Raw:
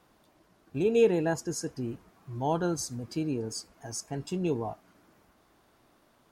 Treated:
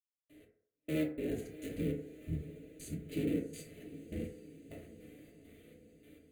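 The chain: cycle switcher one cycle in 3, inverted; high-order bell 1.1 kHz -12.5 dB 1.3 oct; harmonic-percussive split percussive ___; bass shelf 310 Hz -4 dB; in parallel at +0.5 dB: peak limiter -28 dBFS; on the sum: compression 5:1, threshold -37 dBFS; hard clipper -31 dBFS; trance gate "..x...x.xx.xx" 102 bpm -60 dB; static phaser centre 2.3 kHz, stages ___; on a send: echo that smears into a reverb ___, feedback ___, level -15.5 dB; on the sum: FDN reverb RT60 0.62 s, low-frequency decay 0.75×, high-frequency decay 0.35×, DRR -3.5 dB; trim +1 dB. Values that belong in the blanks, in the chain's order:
-17 dB, 4, 675 ms, 62%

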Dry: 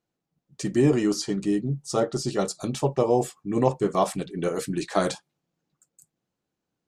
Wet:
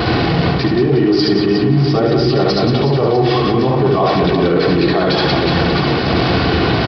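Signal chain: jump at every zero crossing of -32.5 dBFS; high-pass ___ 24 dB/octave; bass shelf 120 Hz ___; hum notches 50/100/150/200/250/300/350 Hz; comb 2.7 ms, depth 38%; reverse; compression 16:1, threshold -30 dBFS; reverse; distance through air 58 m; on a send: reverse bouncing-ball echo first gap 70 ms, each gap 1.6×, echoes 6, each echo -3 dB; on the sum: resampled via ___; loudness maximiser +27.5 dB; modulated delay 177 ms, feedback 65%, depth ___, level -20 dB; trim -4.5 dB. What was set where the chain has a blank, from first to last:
59 Hz, +10.5 dB, 11.025 kHz, 57 cents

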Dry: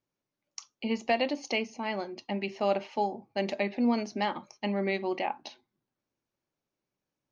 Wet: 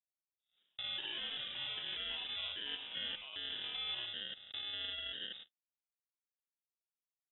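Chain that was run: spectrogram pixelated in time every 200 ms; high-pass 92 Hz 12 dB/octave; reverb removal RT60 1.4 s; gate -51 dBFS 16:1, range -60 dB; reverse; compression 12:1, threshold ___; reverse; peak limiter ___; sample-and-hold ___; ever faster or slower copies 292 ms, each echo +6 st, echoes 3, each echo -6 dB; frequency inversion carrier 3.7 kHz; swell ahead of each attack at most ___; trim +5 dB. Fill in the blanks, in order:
-39 dBFS, -40 dBFS, 33×, 140 dB/s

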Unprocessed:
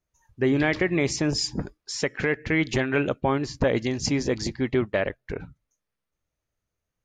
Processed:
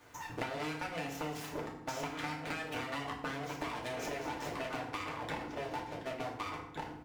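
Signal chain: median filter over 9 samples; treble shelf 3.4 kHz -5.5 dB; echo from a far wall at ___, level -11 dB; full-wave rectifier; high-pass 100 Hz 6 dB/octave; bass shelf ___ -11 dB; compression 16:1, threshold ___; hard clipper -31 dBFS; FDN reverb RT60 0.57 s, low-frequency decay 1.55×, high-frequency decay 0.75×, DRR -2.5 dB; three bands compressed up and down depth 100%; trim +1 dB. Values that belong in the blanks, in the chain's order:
250 m, 480 Hz, -41 dBFS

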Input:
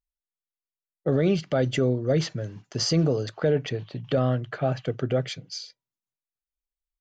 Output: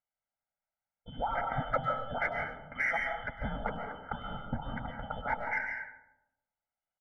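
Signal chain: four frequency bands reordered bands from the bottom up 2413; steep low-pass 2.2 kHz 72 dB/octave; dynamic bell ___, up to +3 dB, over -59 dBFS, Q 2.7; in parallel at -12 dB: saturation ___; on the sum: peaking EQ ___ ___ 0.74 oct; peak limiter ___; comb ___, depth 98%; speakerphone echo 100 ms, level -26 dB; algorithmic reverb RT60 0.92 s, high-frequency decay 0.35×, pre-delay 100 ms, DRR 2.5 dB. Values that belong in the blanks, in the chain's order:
260 Hz, -32.5 dBFS, 860 Hz, +5 dB, -22.5 dBFS, 1.4 ms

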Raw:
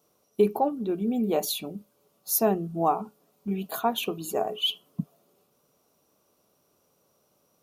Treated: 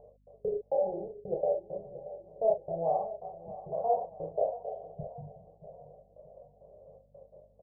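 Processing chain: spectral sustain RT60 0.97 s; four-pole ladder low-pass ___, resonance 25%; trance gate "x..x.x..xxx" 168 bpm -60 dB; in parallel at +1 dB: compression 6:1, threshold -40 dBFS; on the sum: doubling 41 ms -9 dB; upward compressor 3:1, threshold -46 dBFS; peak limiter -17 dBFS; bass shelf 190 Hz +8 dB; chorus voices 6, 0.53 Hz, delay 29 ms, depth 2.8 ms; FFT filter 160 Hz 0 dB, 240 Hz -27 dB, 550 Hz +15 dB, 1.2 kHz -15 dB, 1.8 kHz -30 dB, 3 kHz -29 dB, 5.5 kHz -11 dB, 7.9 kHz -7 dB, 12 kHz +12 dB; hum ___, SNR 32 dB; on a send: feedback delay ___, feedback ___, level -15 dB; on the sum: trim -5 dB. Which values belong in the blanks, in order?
1 kHz, 50 Hz, 630 ms, 46%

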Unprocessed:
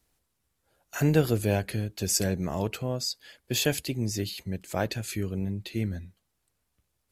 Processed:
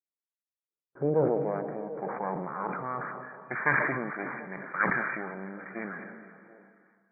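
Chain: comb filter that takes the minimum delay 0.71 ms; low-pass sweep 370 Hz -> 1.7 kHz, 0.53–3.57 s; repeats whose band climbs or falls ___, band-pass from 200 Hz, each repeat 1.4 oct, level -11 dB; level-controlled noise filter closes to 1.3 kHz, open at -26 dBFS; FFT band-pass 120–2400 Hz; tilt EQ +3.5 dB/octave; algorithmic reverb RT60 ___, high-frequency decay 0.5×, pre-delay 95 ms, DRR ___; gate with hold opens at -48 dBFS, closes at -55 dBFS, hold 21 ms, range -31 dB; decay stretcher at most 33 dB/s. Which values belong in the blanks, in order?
369 ms, 4.4 s, 13 dB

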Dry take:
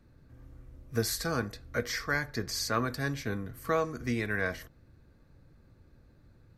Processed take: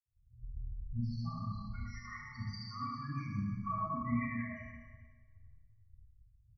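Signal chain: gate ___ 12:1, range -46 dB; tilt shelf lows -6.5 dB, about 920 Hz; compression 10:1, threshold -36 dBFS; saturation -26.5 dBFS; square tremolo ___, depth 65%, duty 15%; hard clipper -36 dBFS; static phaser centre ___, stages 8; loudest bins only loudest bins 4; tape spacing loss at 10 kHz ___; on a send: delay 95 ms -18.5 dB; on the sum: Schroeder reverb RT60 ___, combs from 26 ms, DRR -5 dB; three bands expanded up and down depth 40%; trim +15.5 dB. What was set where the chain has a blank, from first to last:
-56 dBFS, 7.1 Hz, 2.3 kHz, 38 dB, 1.9 s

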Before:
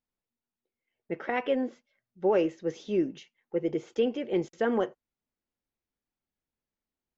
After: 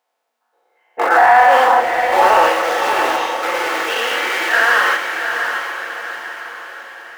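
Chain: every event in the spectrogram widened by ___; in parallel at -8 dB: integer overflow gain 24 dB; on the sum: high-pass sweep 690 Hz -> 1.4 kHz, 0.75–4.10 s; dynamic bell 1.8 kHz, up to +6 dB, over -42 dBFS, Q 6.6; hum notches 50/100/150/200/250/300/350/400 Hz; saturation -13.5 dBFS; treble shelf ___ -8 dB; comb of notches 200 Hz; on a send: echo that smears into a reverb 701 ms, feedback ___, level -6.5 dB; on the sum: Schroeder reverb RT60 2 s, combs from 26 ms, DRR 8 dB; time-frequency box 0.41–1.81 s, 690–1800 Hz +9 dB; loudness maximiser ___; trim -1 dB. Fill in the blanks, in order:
240 ms, 4.1 kHz, 48%, +14 dB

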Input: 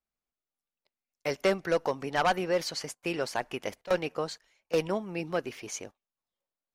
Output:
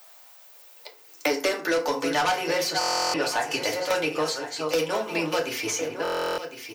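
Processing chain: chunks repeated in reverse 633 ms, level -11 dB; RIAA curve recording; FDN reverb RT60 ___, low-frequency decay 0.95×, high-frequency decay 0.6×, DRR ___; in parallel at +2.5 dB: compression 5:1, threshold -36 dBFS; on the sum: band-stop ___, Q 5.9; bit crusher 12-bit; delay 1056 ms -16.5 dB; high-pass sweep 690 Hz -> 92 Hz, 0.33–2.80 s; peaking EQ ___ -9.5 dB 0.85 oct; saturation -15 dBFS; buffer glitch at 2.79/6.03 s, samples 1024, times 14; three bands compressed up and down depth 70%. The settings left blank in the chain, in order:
0.34 s, -1 dB, 190 Hz, 11 kHz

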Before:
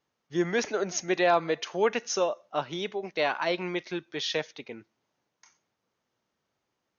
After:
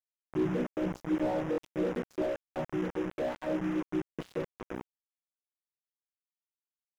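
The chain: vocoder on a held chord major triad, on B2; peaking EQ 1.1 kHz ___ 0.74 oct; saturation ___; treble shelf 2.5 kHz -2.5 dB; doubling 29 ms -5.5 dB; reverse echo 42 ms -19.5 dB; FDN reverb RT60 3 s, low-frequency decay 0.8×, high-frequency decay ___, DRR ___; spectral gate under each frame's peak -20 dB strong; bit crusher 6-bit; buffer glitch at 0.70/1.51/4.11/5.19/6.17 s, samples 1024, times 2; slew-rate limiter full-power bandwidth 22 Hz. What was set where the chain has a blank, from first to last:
-9.5 dB, -23 dBFS, 0.7×, 17 dB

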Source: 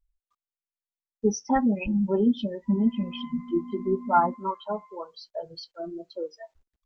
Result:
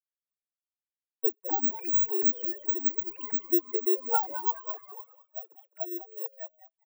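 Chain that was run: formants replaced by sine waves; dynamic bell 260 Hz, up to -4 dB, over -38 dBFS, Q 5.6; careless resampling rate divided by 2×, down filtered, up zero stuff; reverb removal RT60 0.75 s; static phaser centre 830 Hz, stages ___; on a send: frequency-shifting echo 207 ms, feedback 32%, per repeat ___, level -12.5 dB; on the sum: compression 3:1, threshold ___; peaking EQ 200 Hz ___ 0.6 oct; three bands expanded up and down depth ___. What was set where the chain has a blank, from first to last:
8, +96 Hz, -23 dBFS, -13.5 dB, 40%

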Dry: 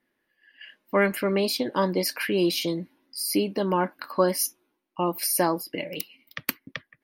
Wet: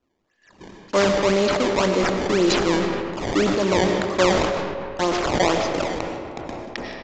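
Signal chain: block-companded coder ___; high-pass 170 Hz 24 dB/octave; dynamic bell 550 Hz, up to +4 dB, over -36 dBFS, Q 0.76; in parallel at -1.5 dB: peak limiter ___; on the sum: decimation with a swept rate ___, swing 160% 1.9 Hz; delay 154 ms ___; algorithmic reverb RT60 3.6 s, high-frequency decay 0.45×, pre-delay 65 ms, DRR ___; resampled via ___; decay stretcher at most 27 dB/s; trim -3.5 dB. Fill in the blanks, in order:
3-bit, -15 dBFS, 19×, -22.5 dB, 6.5 dB, 16 kHz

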